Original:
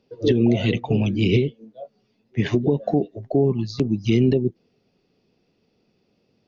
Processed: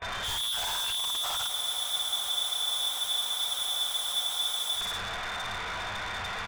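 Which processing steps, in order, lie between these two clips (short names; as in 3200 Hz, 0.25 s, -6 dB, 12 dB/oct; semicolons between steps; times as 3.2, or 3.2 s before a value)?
AGC gain up to 14 dB; requantised 6-bit, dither triangular; EQ curve 130 Hz 0 dB, 490 Hz -12 dB, 2200 Hz +9 dB; on a send: echo 0.112 s -17.5 dB; on the sum: shoebox room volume 79 m³, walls mixed, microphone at 2.1 m; inverted band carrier 3600 Hz; gate with hold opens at -23 dBFS; soft clip -30.5 dBFS, distortion 1 dB; bell 270 Hz -12 dB 1.5 oct; spectral freeze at 1.52, 3.26 s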